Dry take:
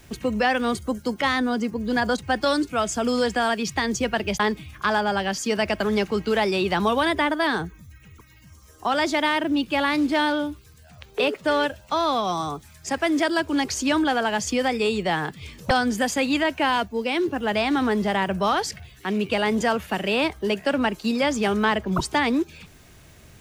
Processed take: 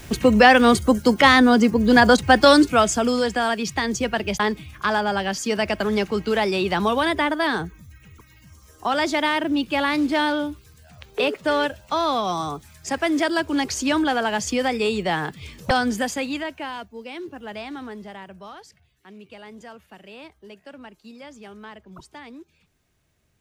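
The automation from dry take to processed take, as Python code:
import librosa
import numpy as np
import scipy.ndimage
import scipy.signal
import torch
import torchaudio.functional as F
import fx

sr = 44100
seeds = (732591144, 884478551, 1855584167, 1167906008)

y = fx.gain(x, sr, db=fx.line((2.66, 9.0), (3.2, 0.5), (15.91, 0.5), (16.73, -11.0), (17.59, -11.0), (18.61, -19.5)))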